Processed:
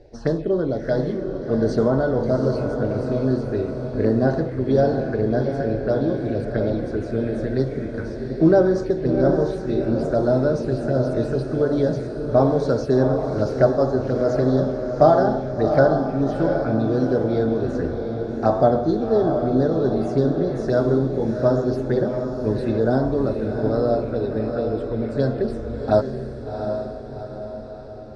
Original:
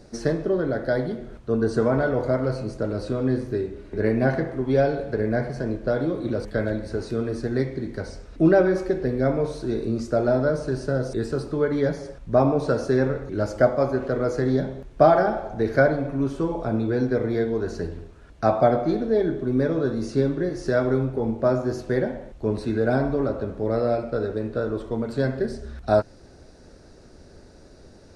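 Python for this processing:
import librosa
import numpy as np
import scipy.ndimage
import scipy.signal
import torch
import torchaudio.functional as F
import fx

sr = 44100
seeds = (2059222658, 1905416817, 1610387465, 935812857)

y = fx.env_phaser(x, sr, low_hz=190.0, high_hz=2300.0, full_db=-19.0)
y = fx.env_lowpass(y, sr, base_hz=2300.0, full_db=-20.0)
y = fx.echo_diffused(y, sr, ms=736, feedback_pct=53, wet_db=-6)
y = F.gain(torch.from_numpy(y), 2.5).numpy()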